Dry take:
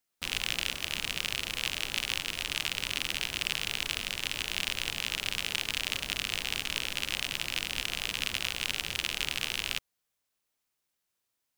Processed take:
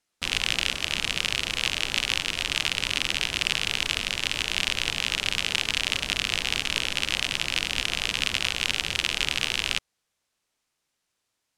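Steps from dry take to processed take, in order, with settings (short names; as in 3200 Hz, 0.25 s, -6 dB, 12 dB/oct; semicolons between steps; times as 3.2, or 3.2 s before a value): LPF 8900 Hz 12 dB/oct; gain +6.5 dB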